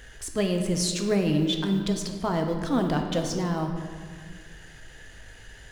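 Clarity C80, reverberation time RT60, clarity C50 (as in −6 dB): 7.0 dB, 1.9 s, 5.5 dB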